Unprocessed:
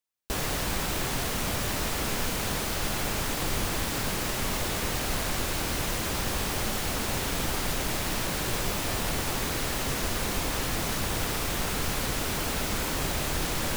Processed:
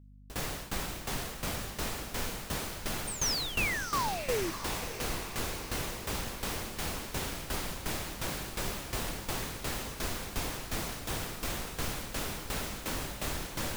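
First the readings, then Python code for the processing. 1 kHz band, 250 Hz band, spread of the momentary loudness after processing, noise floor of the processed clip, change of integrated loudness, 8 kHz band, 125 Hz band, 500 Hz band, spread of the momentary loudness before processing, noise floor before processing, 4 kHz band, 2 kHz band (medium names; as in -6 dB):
-5.5 dB, -7.0 dB, 6 LU, -44 dBFS, -6.0 dB, -6.0 dB, -7.0 dB, -5.5 dB, 0 LU, -31 dBFS, -6.0 dB, -5.5 dB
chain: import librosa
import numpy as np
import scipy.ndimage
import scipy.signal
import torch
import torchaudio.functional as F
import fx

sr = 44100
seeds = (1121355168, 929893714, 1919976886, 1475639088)

y = fx.spec_paint(x, sr, seeds[0], shape='fall', start_s=3.07, length_s=1.44, low_hz=310.0, high_hz=9100.0, level_db=-26.0)
y = fx.tremolo_shape(y, sr, shape='saw_down', hz=2.8, depth_pct=90)
y = fx.add_hum(y, sr, base_hz=50, snr_db=18)
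y = fx.echo_diffused(y, sr, ms=663, feedback_pct=64, wet_db=-11)
y = y * librosa.db_to_amplitude(-3.5)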